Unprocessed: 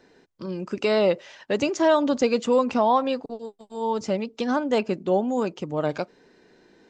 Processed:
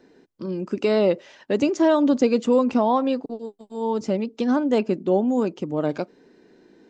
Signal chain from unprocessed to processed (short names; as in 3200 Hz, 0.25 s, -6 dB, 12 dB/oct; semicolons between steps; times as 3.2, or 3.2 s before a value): bell 280 Hz +8.5 dB 1.6 oct; gain -3 dB